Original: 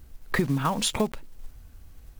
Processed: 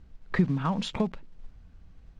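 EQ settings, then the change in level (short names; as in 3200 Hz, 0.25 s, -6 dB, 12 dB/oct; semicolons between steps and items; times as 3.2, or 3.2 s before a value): air absorption 150 m; bell 180 Hz +10 dB 0.35 oct; -4.0 dB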